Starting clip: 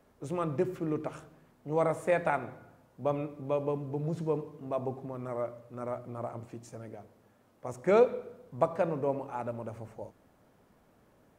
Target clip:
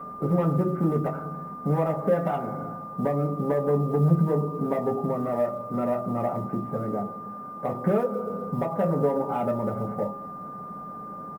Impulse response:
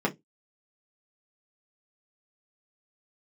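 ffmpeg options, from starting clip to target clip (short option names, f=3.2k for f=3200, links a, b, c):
-filter_complex "[0:a]lowpass=f=1.6k:w=0.5412,lowpass=f=1.6k:w=1.3066,aecho=1:1:1.4:0.34,bandreject=f=136.6:t=h:w=4,bandreject=f=273.2:t=h:w=4,bandreject=f=409.8:t=h:w=4,bandreject=f=546.4:t=h:w=4,bandreject=f=683:t=h:w=4,bandreject=f=819.6:t=h:w=4,bandreject=f=956.2:t=h:w=4,bandreject=f=1.0928k:t=h:w=4,bandreject=f=1.2294k:t=h:w=4,bandreject=f=1.366k:t=h:w=4,alimiter=limit=-22.5dB:level=0:latency=1:release=342,acompressor=threshold=-46dB:ratio=2,aresample=8000,asoftclip=type=tanh:threshold=-37.5dB,aresample=44100,aeval=exprs='val(0)+0.00224*sin(2*PI*1200*n/s)':c=same,acrusher=bits=7:mode=log:mix=0:aa=0.000001,crystalizer=i=1.5:c=0[a];[1:a]atrim=start_sample=2205[b];[a][b]afir=irnorm=-1:irlink=0,volume=6dB" -ar 44100 -c:a aac -b:a 96k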